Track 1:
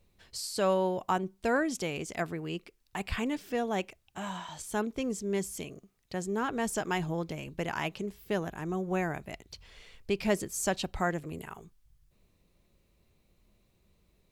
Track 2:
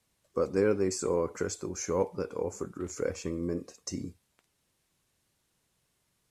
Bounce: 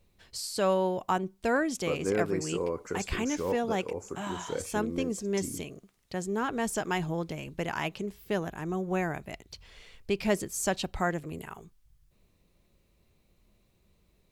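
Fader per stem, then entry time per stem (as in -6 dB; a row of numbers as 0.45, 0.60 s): +1.0, -3.0 dB; 0.00, 1.50 s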